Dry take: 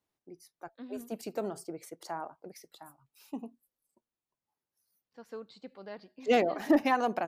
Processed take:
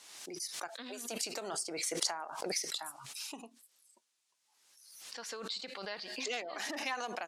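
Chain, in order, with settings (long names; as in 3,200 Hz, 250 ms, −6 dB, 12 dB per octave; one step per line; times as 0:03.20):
downward compressor 5 to 1, threshold −43 dBFS, peak gain reduction 21 dB
meter weighting curve ITU-R 468
background raised ahead of every attack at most 46 dB per second
level +7 dB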